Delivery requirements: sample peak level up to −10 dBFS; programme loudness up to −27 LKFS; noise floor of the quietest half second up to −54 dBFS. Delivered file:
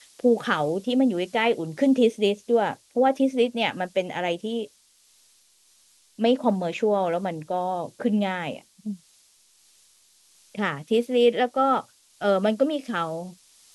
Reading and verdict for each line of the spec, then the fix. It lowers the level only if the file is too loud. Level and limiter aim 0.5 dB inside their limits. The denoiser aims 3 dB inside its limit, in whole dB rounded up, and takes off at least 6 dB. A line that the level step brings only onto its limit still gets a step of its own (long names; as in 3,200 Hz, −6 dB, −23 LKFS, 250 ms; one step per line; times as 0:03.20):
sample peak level −7.0 dBFS: out of spec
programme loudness −24.0 LKFS: out of spec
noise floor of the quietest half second −60 dBFS: in spec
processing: level −3.5 dB